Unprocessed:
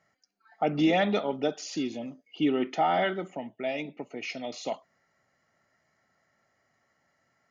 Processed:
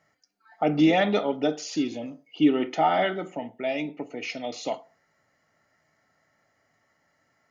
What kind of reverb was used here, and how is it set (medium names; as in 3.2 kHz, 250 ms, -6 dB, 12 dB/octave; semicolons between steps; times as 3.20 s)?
FDN reverb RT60 0.36 s, low-frequency decay 0.8×, high-frequency decay 0.55×, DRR 9.5 dB; trim +2.5 dB